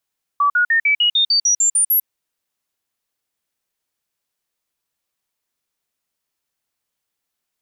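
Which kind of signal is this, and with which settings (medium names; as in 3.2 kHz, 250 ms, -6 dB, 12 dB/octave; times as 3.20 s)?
stepped sine 1.15 kHz up, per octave 3, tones 11, 0.10 s, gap 0.05 s -12 dBFS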